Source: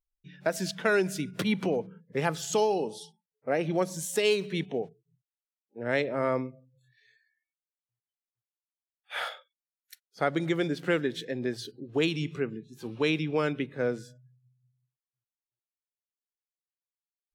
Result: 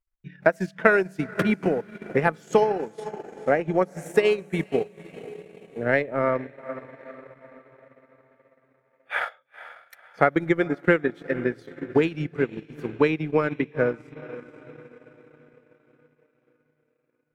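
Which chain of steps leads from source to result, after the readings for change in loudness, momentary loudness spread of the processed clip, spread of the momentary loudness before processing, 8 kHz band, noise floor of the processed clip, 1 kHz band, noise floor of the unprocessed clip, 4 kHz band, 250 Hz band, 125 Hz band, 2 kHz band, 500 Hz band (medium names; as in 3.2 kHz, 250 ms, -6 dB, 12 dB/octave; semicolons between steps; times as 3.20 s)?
+5.0 dB, 18 LU, 12 LU, under -10 dB, -71 dBFS, +6.5 dB, under -85 dBFS, -5.5 dB, +4.5 dB, +4.0 dB, +7.0 dB, +5.5 dB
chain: resonant high shelf 2.7 kHz -9.5 dB, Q 1.5; echo that smears into a reverb 468 ms, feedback 48%, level -12.5 dB; transient shaper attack +7 dB, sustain -11 dB; trim +2.5 dB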